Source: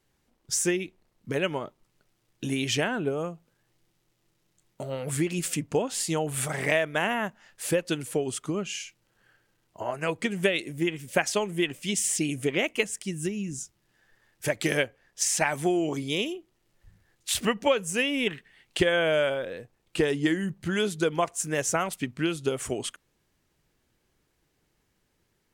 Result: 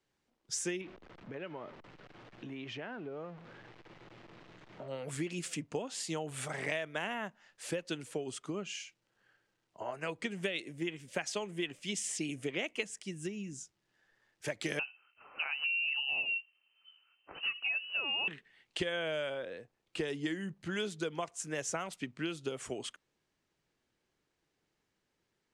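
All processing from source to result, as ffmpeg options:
-filter_complex "[0:a]asettb=1/sr,asplit=3[a][b][c];[a]atrim=end=0.814[d];[b]atrim=start=0.81:end=4.88,asetpts=PTS-STARTPTS,afade=t=in:d=0.004:c=qsin,afade=t=out:st=4.066:d=0.004:c=qsin,aeval=exprs='val(0)+0.5*0.0133*sgn(val(0))':c=same,lowpass=2.5k,acompressor=threshold=-34dB:ratio=3:attack=3.2:release=140:knee=1:detection=peak[e];[c]atrim=start=4.876[f];[d][e]acrossfade=d=0.004:c1=hsin:c2=qsin[g];[g][f]acrossfade=d=0.004:c1=qsin:c2=hsin,asettb=1/sr,asplit=3[h][i][j];[h]atrim=end=14.794[k];[i]atrim=start=14.79:end=18.28,asetpts=PTS-STARTPTS,afade=t=in:d=0.004:c=qsin,afade=t=out:st=3.486:d=0.004:c=qsin,equalizer=f=430:t=o:w=0.75:g=14.5,acompressor=threshold=-23dB:ratio=12:attack=3.2:release=140:knee=1:detection=peak,lowpass=f=2.6k:t=q:w=0.5098,lowpass=f=2.6k:t=q:w=0.6013,lowpass=f=2.6k:t=q:w=0.9,lowpass=f=2.6k:t=q:w=2.563,afreqshift=-3100[l];[j]atrim=start=18.276[m];[k][l]acrossfade=d=0.004:c1=hsin:c2=qsin[n];[n][m]acrossfade=d=0.004:c1=qsin:c2=hsin,lowpass=7.1k,lowshelf=f=120:g=-11,acrossover=split=190|3000[o][p][q];[p]acompressor=threshold=-28dB:ratio=3[r];[o][r][q]amix=inputs=3:normalize=0,volume=-6.5dB"

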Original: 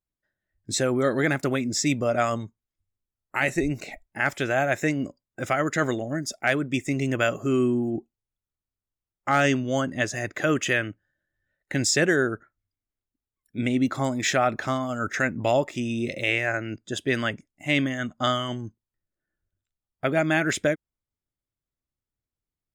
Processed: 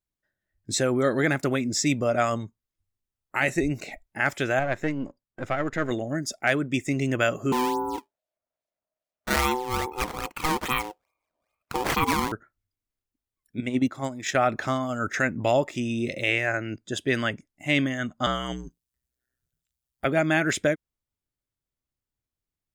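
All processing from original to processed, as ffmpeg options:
-filter_complex "[0:a]asettb=1/sr,asplit=3[a][b][c];[a]atrim=end=4.594[d];[b]atrim=start=4.59:end=5.91,asetpts=PTS-STARTPTS,afade=t=in:d=0.004:c=qsin,afade=t=out:st=1.316:d=0.004:c=qsin,aeval=exprs='if(lt(val(0),0),0.447*val(0),val(0))':c=same,lowpass=f=1.9k:p=1[e];[c]atrim=start=5.906[f];[d][e]acrossfade=d=0.004:c1=hsin:c2=qsin[g];[g][f]acrossfade=d=0.004:c1=qsin:c2=hsin,asettb=1/sr,asplit=3[h][i][j];[h]atrim=end=7.524[k];[i]atrim=start=7.52:end=12.32,asetpts=PTS-STARTPTS,afade=t=in:d=0.004:c=qsin,afade=t=out:st=4.796:d=0.004:c=qsin,acrusher=samples=12:mix=1:aa=0.000001:lfo=1:lforange=19.2:lforate=2.4,aeval=exprs='val(0)*sin(2*PI*630*n/s)':c=same[l];[j]atrim=start=12.316[m];[k][l]acrossfade=d=0.004:c1=hsin:c2=qsin[n];[n][m]acrossfade=d=0.004:c1=qsin:c2=hsin,asettb=1/sr,asplit=3[o][p][q];[o]atrim=end=13.604[r];[p]atrim=start=13.6:end=14.35,asetpts=PTS-STARTPTS,afade=t=in:d=0.004:c=qsin,afade=t=out:st=0.746:d=0.004:c=qsin,bandreject=f=4.3k:w=16,agate=range=-9dB:threshold=-24dB:ratio=16:release=100:detection=peak,highpass=49[s];[q]atrim=start=14.346[t];[r][s]acrossfade=d=0.004:c1=hsin:c2=qsin[u];[u][t]acrossfade=d=0.004:c1=qsin:c2=hsin,asettb=1/sr,asplit=3[v][w][x];[v]atrim=end=18.264[y];[w]atrim=start=18.26:end=20.06,asetpts=PTS-STARTPTS,afade=t=in:d=0.004:c=qsin,afade=t=out:st=1.796:d=0.004:c=qsin,acrossover=split=3000[z][aa];[aa]acompressor=threshold=-46dB:ratio=4:attack=1:release=60[ab];[z][ab]amix=inputs=2:normalize=0,highshelf=f=3.2k:g=11.5,aeval=exprs='val(0)*sin(2*PI*62*n/s)':c=same[ac];[x]atrim=start=20.056[ad];[y][ac]acrossfade=d=0.004:c1=hsin:c2=qsin[ae];[ae][ad]acrossfade=d=0.004:c1=qsin:c2=hsin"

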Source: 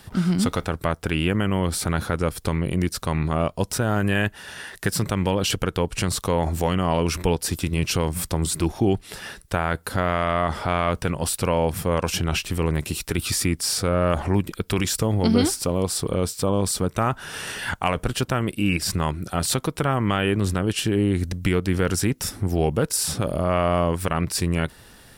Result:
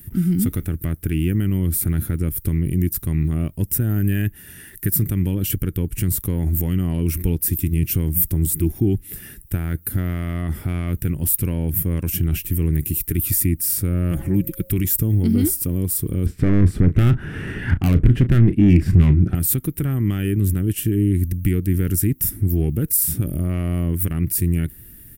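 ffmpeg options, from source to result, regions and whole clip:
-filter_complex "[0:a]asettb=1/sr,asplit=3[a][b][c];[a]atrim=end=14.114[d];[b]atrim=start=14.11:end=14.7,asetpts=PTS-STARTPTS,afade=t=in:d=0.004:c=qsin,afade=t=out:st=0.586:d=0.004:c=qsin,aecho=1:1:6:0.56,atrim=end_sample=26019,aeval=exprs='val(0)+0.0251*sin(2*PI*540*n/s)':c=same[e];[c]atrim=start=14.696[f];[d][e]acrossfade=d=0.004:c1=hsin:c2=qsin[g];[g][f]acrossfade=d=0.004:c1=qsin:c2=hsin,asettb=1/sr,asplit=3[h][i][j];[h]atrim=end=16.264[k];[i]atrim=start=16.26:end=19.35,asetpts=PTS-STARTPTS,afade=t=in:d=0.004:c=qsin,afade=t=out:st=3.086:d=0.004:c=qsin,lowpass=1.7k,aeval=exprs='0.355*sin(PI/2*2.51*val(0)/0.355)':c=same,asplit=2[l][m];[m]adelay=34,volume=-12.5dB[n];[l][n]amix=inputs=2:normalize=0,atrim=end_sample=136269[o];[j]atrim=start=19.346[p];[k][o]acrossfade=d=0.004:c1=hsin:c2=qsin[q];[q][p]acrossfade=d=0.004:c1=qsin:c2=hsin,acontrast=66,firequalizer=gain_entry='entry(100,0);entry(210,-5);entry(320,-3);entry(500,-20);entry(960,-26);entry(1900,-12);entry(4200,-21);entry(14000,13)':delay=0.05:min_phase=1"

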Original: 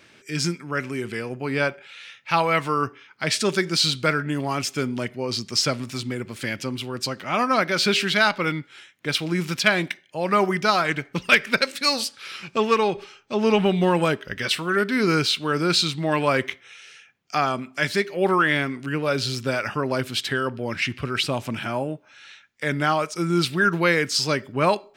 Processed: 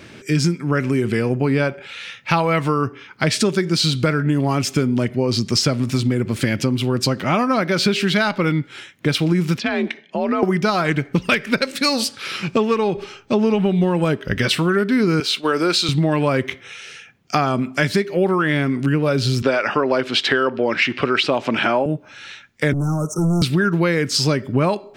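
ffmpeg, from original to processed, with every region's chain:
-filter_complex "[0:a]asettb=1/sr,asplit=3[a][b][c];[a]atrim=end=9.584[d];[b]atrim=start=9.58:end=10.43,asetpts=PTS-STARTPTS,afade=t=in:d=0.004:c=qsin,afade=t=out:st=0.846:d=0.004:c=qsin,lowpass=4.2k,acompressor=threshold=-32dB:ratio=2.5:attack=3.2:release=140:knee=1:detection=peak,afreqshift=49[e];[c]atrim=start=10.426[f];[d][e]acrossfade=d=0.004:c1=hsin:c2=qsin[g];[g][f]acrossfade=d=0.004:c1=qsin:c2=hsin,asettb=1/sr,asplit=3[h][i][j];[h]atrim=end=15.204[k];[i]atrim=start=15.2:end=15.89,asetpts=PTS-STARTPTS,afade=t=in:d=0.004:c=qsin,afade=t=out:st=0.686:d=0.004:c=qsin,highpass=410,agate=range=-33dB:threshold=-33dB:ratio=3:release=100:detection=peak[l];[j]atrim=start=15.886[m];[k][l]acrossfade=d=0.004:c1=hsin:c2=qsin[n];[n][m]acrossfade=d=0.004:c1=qsin:c2=hsin,asettb=1/sr,asplit=3[o][p][q];[o]atrim=end=19.424[r];[p]atrim=start=19.42:end=21.86,asetpts=PTS-STARTPTS,afade=t=in:d=0.004:c=qsin,afade=t=out:st=2.436:d=0.004:c=qsin,highpass=400,lowpass=4.4k,acontrast=82[s];[q]atrim=start=21.856[t];[r][s]acrossfade=d=0.004:c1=hsin:c2=qsin[u];[u][t]acrossfade=d=0.004:c1=qsin:c2=hsin,asettb=1/sr,asplit=3[v][w][x];[v]atrim=end=22.734[y];[w]atrim=start=22.73:end=23.42,asetpts=PTS-STARTPTS,afade=t=in:d=0.004:c=qsin,afade=t=out:st=0.686:d=0.004:c=qsin,acrossover=split=280|3000[z][aa][ab];[aa]acompressor=threshold=-41dB:ratio=2.5:attack=3.2:release=140:knee=2.83:detection=peak[ac];[z][ac][ab]amix=inputs=3:normalize=0,asoftclip=type=hard:threshold=-29.5dB,asuperstop=centerf=2900:order=20:qfactor=0.67[ad];[x]atrim=start=23.416[ae];[y][ad]acrossfade=d=0.004:c1=hsin:c2=qsin[af];[af][ae]acrossfade=d=0.004:c1=qsin:c2=hsin,lowshelf=f=480:g=10.5,acompressor=threshold=-23dB:ratio=6,volume=8dB"

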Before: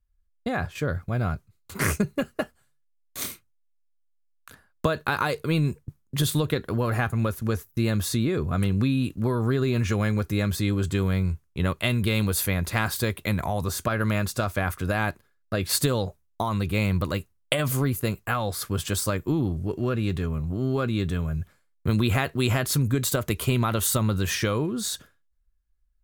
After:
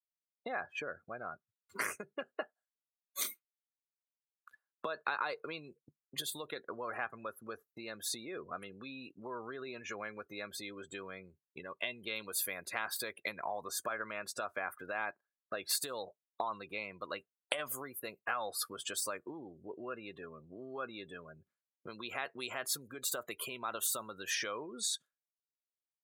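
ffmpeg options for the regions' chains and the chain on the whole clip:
-filter_complex "[0:a]asettb=1/sr,asplit=3[a][b][c];[a]atrim=end=11.464[d];[b]atrim=start=11.46:end=12.07,asetpts=PTS-STARTPTS,afade=t=in:d=0.004:c=qsin,afade=t=out:st=0.606:d=0.004:c=qsin,acompressor=threshold=-27dB:ratio=2.5:attack=3.2:release=140:knee=1:detection=peak,asuperstop=centerf=1300:order=4:qfactor=7[e];[c]atrim=start=12.066[f];[d][e]acrossfade=d=0.004:c1=hsin:c2=qsin[g];[g][f]acrossfade=d=0.004:c1=qsin:c2=hsin,afftdn=nr=30:nf=-36,acompressor=threshold=-33dB:ratio=6,highpass=590,volume=2dB"

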